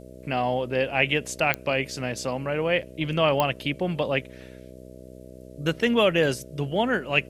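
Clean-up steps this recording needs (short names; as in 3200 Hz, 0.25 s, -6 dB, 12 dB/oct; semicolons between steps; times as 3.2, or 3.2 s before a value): de-click; de-hum 63.3 Hz, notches 10; expander -37 dBFS, range -21 dB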